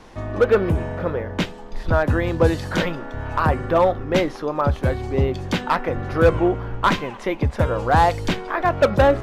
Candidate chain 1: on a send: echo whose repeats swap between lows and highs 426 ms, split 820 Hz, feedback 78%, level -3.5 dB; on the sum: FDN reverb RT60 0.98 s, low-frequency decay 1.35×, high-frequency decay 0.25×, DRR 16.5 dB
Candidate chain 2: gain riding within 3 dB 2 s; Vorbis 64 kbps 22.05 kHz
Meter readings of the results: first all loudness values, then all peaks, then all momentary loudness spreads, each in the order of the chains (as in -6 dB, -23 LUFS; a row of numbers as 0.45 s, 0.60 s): -19.0 LUFS, -20.5 LUFS; -2.5 dBFS, -5.0 dBFS; 6 LU, 9 LU